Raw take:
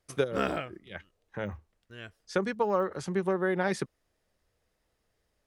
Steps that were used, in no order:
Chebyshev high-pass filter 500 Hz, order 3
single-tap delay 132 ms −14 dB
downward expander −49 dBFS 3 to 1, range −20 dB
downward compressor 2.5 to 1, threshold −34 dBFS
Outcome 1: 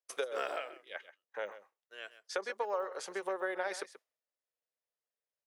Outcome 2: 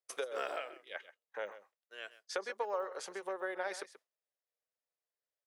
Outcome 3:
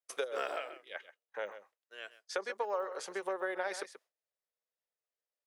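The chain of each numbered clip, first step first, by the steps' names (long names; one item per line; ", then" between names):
downward expander, then Chebyshev high-pass filter, then downward compressor, then single-tap delay
downward compressor, then single-tap delay, then downward expander, then Chebyshev high-pass filter
single-tap delay, then downward expander, then Chebyshev high-pass filter, then downward compressor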